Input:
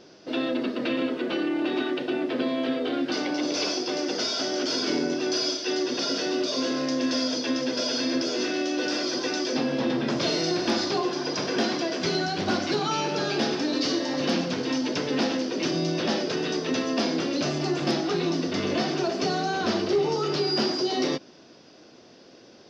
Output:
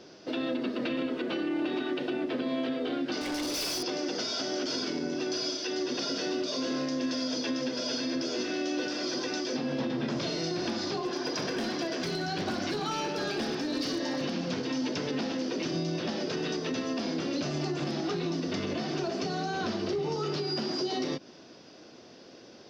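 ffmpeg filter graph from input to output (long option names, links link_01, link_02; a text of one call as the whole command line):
ffmpeg -i in.wav -filter_complex "[0:a]asettb=1/sr,asplit=3[link_01][link_02][link_03];[link_01]atrim=end=3.214[link_04];[link_02]atrim=start=3.21:end=3.83,asetpts=PTS-STARTPTS,afade=type=in:duration=0.004:curve=qsin,afade=type=out:start_time=0.616:duration=0.004:curve=qsin,highshelf=frequency=2500:gain=6.5,volume=28dB,asoftclip=hard,volume=-28dB[link_05];[link_03]atrim=start=3.826[link_06];[link_04][link_05]acrossfade=duration=0.004:curve1=hsin:curve2=qsin[link_07];[link_07][link_06]acrossfade=duration=0.004:curve1=qsin:curve2=hsin,asettb=1/sr,asplit=3[link_08][link_09][link_10];[link_08]atrim=end=11.054[link_11];[link_09]atrim=start=11.05:end=14.23,asetpts=PTS-STARTPTS,afade=type=in:duration=0.004:curve=qsin,afade=type=out:start_time=3.176:duration=0.004:curve=qsin,equalizer=frequency=1700:width=7:gain=3,bandreject=frequency=50:width_type=h:width=6,bandreject=frequency=100:width_type=h:width=6,bandreject=frequency=150:width_type=h:width=6,bandreject=frequency=200:width_type=h:width=6,asoftclip=type=hard:threshold=-20.5dB[link_12];[link_10]atrim=start=14.226[link_13];[link_11][link_12]acrossfade=duration=0.004:curve1=hsin:curve2=qsin[link_14];[link_14][link_13]acrossfade=duration=0.004:curve1=qsin:curve2=hsin,acrossover=split=210[link_15][link_16];[link_16]acompressor=threshold=-29dB:ratio=6[link_17];[link_15][link_17]amix=inputs=2:normalize=0,alimiter=limit=-22.5dB:level=0:latency=1:release=126" out.wav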